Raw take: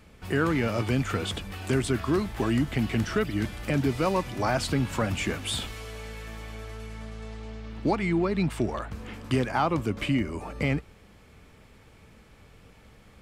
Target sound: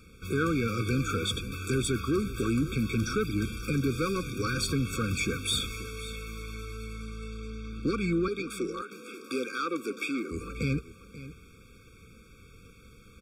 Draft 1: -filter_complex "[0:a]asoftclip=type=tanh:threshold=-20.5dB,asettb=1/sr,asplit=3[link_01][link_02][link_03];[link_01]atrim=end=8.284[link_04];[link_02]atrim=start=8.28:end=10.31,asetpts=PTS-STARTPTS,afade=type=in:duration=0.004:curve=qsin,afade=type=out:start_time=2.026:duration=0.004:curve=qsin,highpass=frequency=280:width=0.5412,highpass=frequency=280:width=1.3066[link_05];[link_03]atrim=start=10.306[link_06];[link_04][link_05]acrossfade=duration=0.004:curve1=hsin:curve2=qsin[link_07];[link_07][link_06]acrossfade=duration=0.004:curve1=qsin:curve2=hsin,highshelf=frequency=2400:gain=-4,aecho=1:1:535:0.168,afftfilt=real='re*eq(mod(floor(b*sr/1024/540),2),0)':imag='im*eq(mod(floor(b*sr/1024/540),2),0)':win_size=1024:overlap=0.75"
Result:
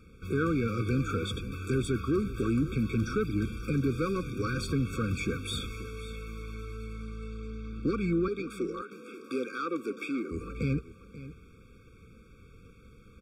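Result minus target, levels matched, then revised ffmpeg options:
4,000 Hz band −6.5 dB
-filter_complex "[0:a]asoftclip=type=tanh:threshold=-20.5dB,asettb=1/sr,asplit=3[link_01][link_02][link_03];[link_01]atrim=end=8.284[link_04];[link_02]atrim=start=8.28:end=10.31,asetpts=PTS-STARTPTS,afade=type=in:duration=0.004:curve=qsin,afade=type=out:start_time=2.026:duration=0.004:curve=qsin,highpass=frequency=280:width=0.5412,highpass=frequency=280:width=1.3066[link_05];[link_03]atrim=start=10.306[link_06];[link_04][link_05]acrossfade=duration=0.004:curve1=hsin:curve2=qsin[link_07];[link_07][link_06]acrossfade=duration=0.004:curve1=qsin:curve2=hsin,highshelf=frequency=2400:gain=6.5,aecho=1:1:535:0.168,afftfilt=real='re*eq(mod(floor(b*sr/1024/540),2),0)':imag='im*eq(mod(floor(b*sr/1024/540),2),0)':win_size=1024:overlap=0.75"

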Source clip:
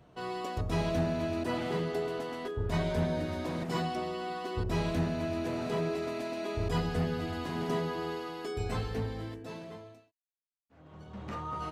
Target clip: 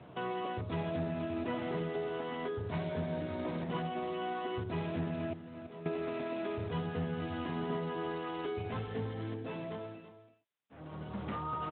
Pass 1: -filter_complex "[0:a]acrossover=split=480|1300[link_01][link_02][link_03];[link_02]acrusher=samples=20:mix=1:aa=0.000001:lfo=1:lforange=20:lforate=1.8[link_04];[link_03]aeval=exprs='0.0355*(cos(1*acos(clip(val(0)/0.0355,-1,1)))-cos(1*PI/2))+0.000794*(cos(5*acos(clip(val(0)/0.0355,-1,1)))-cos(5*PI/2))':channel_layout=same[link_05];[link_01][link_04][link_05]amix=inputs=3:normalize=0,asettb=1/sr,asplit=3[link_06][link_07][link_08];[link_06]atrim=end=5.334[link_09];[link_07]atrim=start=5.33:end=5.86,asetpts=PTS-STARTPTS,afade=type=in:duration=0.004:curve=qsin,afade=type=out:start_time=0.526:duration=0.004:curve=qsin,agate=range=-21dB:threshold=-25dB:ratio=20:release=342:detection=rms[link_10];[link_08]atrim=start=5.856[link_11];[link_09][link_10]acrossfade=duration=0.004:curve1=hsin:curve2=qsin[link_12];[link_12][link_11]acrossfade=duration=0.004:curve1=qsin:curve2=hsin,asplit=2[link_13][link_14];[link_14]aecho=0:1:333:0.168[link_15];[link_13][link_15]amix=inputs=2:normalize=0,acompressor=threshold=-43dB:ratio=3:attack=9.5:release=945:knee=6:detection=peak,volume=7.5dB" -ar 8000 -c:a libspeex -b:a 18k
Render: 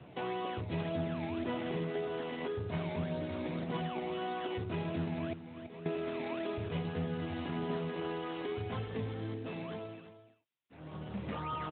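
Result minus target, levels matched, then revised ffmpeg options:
sample-and-hold swept by an LFO: distortion +16 dB
-filter_complex "[0:a]acrossover=split=480|1300[link_01][link_02][link_03];[link_02]acrusher=samples=5:mix=1:aa=0.000001:lfo=1:lforange=5:lforate=1.8[link_04];[link_03]aeval=exprs='0.0355*(cos(1*acos(clip(val(0)/0.0355,-1,1)))-cos(1*PI/2))+0.000794*(cos(5*acos(clip(val(0)/0.0355,-1,1)))-cos(5*PI/2))':channel_layout=same[link_05];[link_01][link_04][link_05]amix=inputs=3:normalize=0,asettb=1/sr,asplit=3[link_06][link_07][link_08];[link_06]atrim=end=5.334[link_09];[link_07]atrim=start=5.33:end=5.86,asetpts=PTS-STARTPTS,afade=type=in:duration=0.004:curve=qsin,afade=type=out:start_time=0.526:duration=0.004:curve=qsin,agate=range=-21dB:threshold=-25dB:ratio=20:release=342:detection=rms[link_10];[link_08]atrim=start=5.856[link_11];[link_09][link_10]acrossfade=duration=0.004:curve1=hsin:curve2=qsin[link_12];[link_12][link_11]acrossfade=duration=0.004:curve1=qsin:curve2=hsin,asplit=2[link_13][link_14];[link_14]aecho=0:1:333:0.168[link_15];[link_13][link_15]amix=inputs=2:normalize=0,acompressor=threshold=-43dB:ratio=3:attack=9.5:release=945:knee=6:detection=peak,volume=7.5dB" -ar 8000 -c:a libspeex -b:a 18k

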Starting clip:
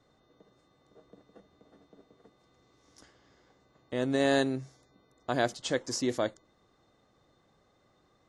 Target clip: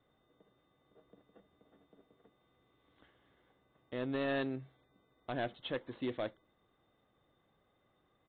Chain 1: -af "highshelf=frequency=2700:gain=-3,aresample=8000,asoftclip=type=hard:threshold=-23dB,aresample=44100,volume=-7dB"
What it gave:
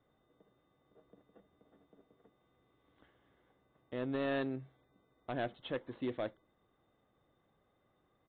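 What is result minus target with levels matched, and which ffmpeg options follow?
4,000 Hz band −3.0 dB
-af "highshelf=frequency=2700:gain=4,aresample=8000,asoftclip=type=hard:threshold=-23dB,aresample=44100,volume=-7dB"

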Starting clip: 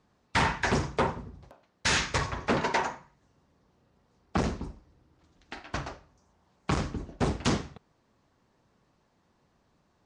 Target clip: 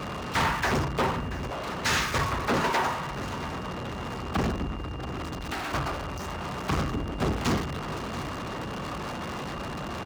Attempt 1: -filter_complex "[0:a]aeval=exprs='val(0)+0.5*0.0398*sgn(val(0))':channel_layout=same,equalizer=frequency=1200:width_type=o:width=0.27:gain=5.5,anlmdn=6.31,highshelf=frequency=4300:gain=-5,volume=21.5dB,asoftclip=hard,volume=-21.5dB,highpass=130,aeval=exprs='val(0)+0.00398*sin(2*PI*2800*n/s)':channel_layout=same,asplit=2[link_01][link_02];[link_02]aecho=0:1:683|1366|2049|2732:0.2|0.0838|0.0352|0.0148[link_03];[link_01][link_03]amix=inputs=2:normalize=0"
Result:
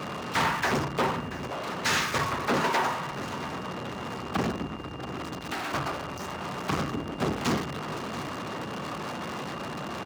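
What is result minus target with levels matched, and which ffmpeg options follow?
125 Hz band −3.0 dB
-filter_complex "[0:a]aeval=exprs='val(0)+0.5*0.0398*sgn(val(0))':channel_layout=same,equalizer=frequency=1200:width_type=o:width=0.27:gain=5.5,anlmdn=6.31,highshelf=frequency=4300:gain=-5,volume=21.5dB,asoftclip=hard,volume=-21.5dB,highpass=33,aeval=exprs='val(0)+0.00398*sin(2*PI*2800*n/s)':channel_layout=same,asplit=2[link_01][link_02];[link_02]aecho=0:1:683|1366|2049|2732:0.2|0.0838|0.0352|0.0148[link_03];[link_01][link_03]amix=inputs=2:normalize=0"

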